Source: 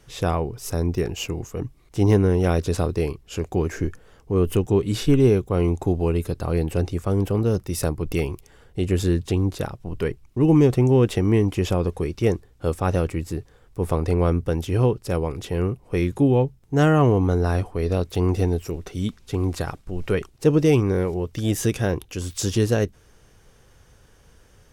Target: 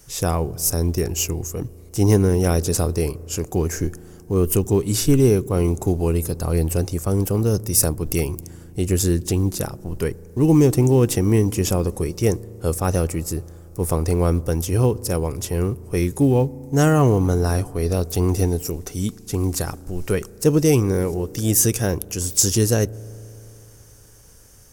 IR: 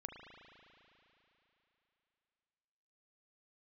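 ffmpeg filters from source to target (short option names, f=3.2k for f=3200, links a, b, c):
-filter_complex "[0:a]aexciter=amount=5.8:drive=2.7:freq=5k,acrusher=bits=9:mode=log:mix=0:aa=0.000001,asplit=2[a][b];[1:a]atrim=start_sample=2205,lowpass=1.6k,lowshelf=f=410:g=10[c];[b][c]afir=irnorm=-1:irlink=0,volume=-15.5dB[d];[a][d]amix=inputs=2:normalize=0"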